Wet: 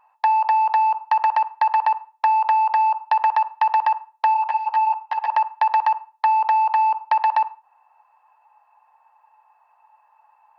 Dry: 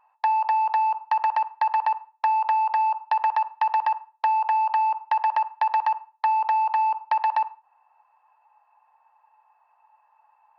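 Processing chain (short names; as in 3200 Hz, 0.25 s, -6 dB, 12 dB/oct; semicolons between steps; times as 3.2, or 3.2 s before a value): 4.34–5.3 ensemble effect; gain +4 dB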